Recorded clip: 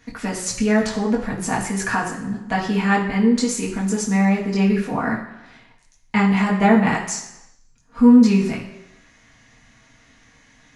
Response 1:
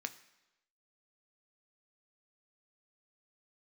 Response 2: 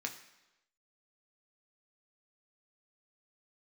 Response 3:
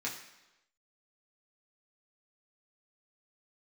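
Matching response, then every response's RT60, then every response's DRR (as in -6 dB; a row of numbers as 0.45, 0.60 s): 3; 1.0, 1.0, 1.0 s; 8.0, 2.0, -5.0 dB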